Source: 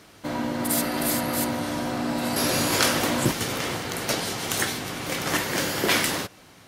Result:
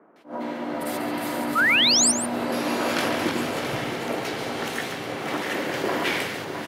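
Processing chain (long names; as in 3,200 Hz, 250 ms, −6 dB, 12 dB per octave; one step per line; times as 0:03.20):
feedback delay that plays each chunk backwards 331 ms, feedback 62%, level −5.5 dB
three-way crossover with the lows and the highs turned down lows −14 dB, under 150 Hz, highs −14 dB, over 3,100 Hz
three-band delay without the direct sound mids, highs, lows 160/470 ms, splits 170/1,400 Hz
sound drawn into the spectrogram rise, 0:01.55–0:02.12, 1,200–9,600 Hz −19 dBFS
on a send: single-tap delay 140 ms −10 dB
on the sum: level that may rise only so fast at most 200 dB per second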